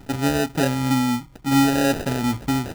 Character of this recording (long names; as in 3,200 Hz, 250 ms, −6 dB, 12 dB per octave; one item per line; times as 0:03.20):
phaser sweep stages 2, 2.2 Hz, lowest notch 680–1,400 Hz
aliases and images of a low sample rate 1,100 Hz, jitter 0%